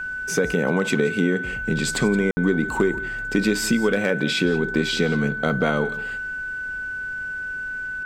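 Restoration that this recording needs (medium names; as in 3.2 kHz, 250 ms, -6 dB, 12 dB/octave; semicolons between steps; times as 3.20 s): clip repair -9.5 dBFS; band-stop 1.5 kHz, Q 30; room tone fill 2.31–2.37 s; inverse comb 172 ms -18 dB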